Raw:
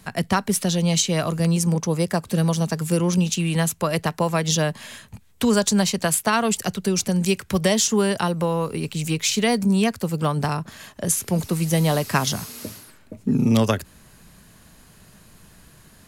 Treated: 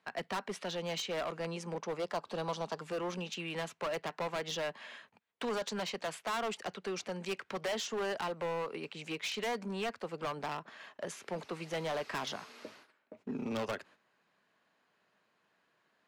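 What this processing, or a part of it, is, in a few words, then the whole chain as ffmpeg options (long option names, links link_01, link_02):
walkie-talkie: -filter_complex "[0:a]highpass=460,lowpass=2800,asoftclip=type=hard:threshold=-25.5dB,agate=range=-10dB:threshold=-52dB:ratio=16:detection=peak,asettb=1/sr,asplit=3[link_01][link_02][link_03];[link_01]atrim=end=2.024[link_04];[link_02]atrim=start=2.02:end=2.81,asetpts=PTS-STARTPTS,afade=type=in:duration=0.004:curve=qsin,afade=type=out:start_time=0.786:duration=0.004:curve=qsin,equalizer=frequency=1000:width_type=o:width=1:gain=6,equalizer=frequency=2000:width_type=o:width=1:gain=-7,equalizer=frequency=4000:width_type=o:width=1:gain=5[link_05];[link_03]atrim=start=2.806[link_06];[link_04][link_05]acrossfade=duration=0.004:curve1=hsin:curve2=qsin[link_07];[link_07][link_06]acrossfade=duration=0.004:curve1=qsin:curve2=hsin,volume=-6.5dB"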